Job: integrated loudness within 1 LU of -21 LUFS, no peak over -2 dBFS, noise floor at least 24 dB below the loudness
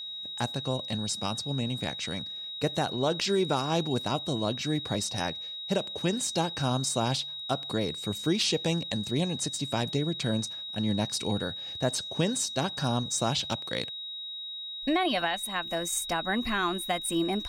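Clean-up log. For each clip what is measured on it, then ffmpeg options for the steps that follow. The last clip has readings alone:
steady tone 3.8 kHz; tone level -36 dBFS; loudness -29.5 LUFS; peak level -14.5 dBFS; loudness target -21.0 LUFS
-> -af "bandreject=f=3800:w=30"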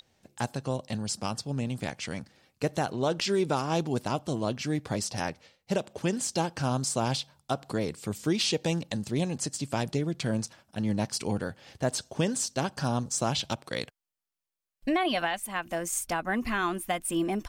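steady tone not found; loudness -30.5 LUFS; peak level -15.5 dBFS; loudness target -21.0 LUFS
-> -af "volume=2.99"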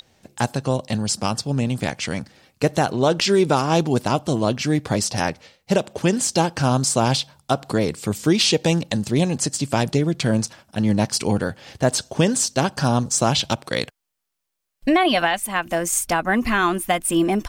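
loudness -21.0 LUFS; peak level -6.0 dBFS; noise floor -79 dBFS

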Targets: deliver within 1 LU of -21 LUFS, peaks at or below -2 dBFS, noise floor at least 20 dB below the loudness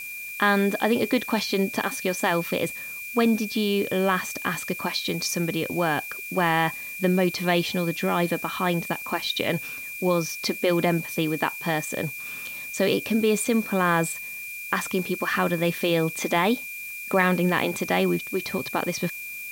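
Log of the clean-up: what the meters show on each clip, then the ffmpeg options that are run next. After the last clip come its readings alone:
steady tone 2.4 kHz; tone level -34 dBFS; noise floor -36 dBFS; noise floor target -45 dBFS; loudness -25.0 LUFS; peak level -7.5 dBFS; loudness target -21.0 LUFS
-> -af "bandreject=f=2400:w=30"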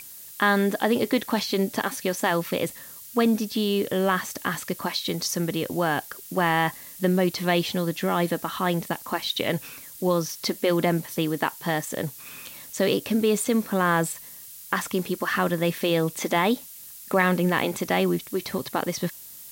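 steady tone not found; noise floor -43 dBFS; noise floor target -45 dBFS
-> -af "afftdn=nr=6:nf=-43"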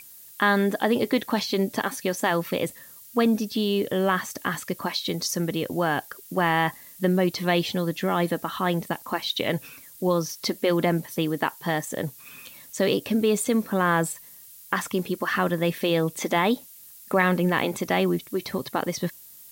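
noise floor -47 dBFS; loudness -25.5 LUFS; peak level -7.5 dBFS; loudness target -21.0 LUFS
-> -af "volume=1.68"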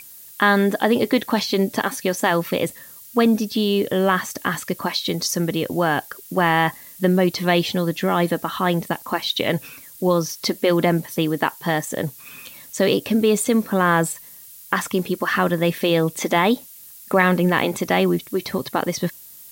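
loudness -21.0 LUFS; peak level -3.0 dBFS; noise floor -43 dBFS

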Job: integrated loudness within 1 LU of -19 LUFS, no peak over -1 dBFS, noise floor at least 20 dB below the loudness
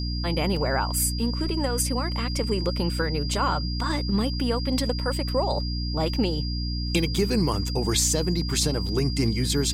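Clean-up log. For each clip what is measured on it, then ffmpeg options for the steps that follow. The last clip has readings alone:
hum 60 Hz; highest harmonic 300 Hz; hum level -26 dBFS; steady tone 4.8 kHz; tone level -34 dBFS; loudness -25.0 LUFS; peak level -10.0 dBFS; loudness target -19.0 LUFS
-> -af "bandreject=f=60:t=h:w=6,bandreject=f=120:t=h:w=6,bandreject=f=180:t=h:w=6,bandreject=f=240:t=h:w=6,bandreject=f=300:t=h:w=6"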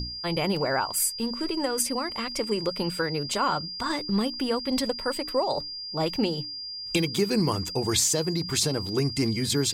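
hum not found; steady tone 4.8 kHz; tone level -34 dBFS
-> -af "bandreject=f=4800:w=30"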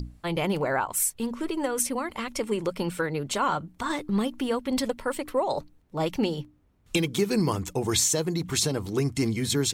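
steady tone not found; loudness -27.5 LUFS; peak level -11.5 dBFS; loudness target -19.0 LUFS
-> -af "volume=2.66"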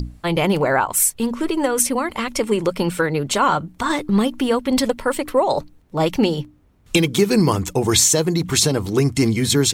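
loudness -19.0 LUFS; peak level -3.0 dBFS; noise floor -52 dBFS

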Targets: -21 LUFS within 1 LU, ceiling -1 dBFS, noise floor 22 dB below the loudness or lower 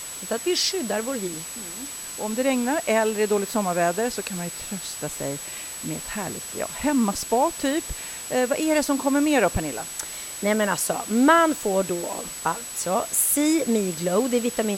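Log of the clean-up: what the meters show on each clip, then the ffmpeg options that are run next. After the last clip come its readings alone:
steady tone 7.9 kHz; tone level -35 dBFS; noise floor -36 dBFS; noise floor target -46 dBFS; loudness -24.0 LUFS; peak level -5.0 dBFS; loudness target -21.0 LUFS
-> -af "bandreject=f=7900:w=30"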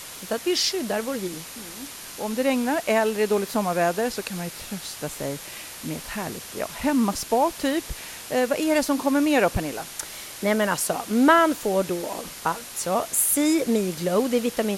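steady tone not found; noise floor -39 dBFS; noise floor target -46 dBFS
-> -af "afftdn=nr=7:nf=-39"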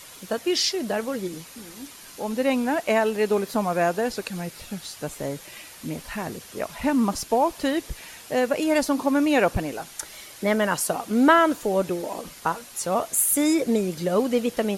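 noise floor -45 dBFS; noise floor target -46 dBFS
-> -af "afftdn=nr=6:nf=-45"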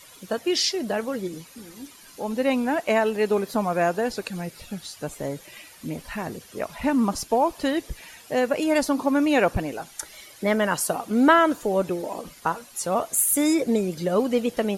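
noise floor -49 dBFS; loudness -24.0 LUFS; peak level -4.5 dBFS; loudness target -21.0 LUFS
-> -af "volume=1.41"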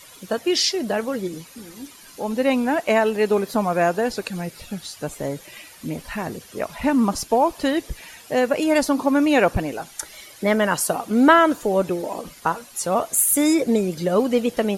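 loudness -21.0 LUFS; peak level -1.5 dBFS; noise floor -46 dBFS

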